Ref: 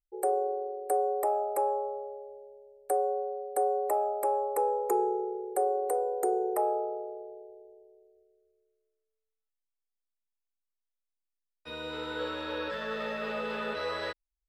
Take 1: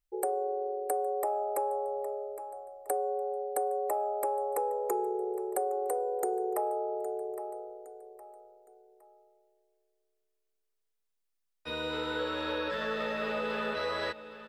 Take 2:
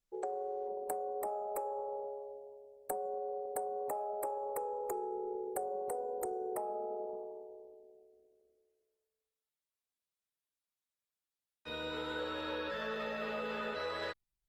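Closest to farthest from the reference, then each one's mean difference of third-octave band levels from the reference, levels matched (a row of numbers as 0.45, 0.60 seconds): 1, 2; 3.0, 4.5 decibels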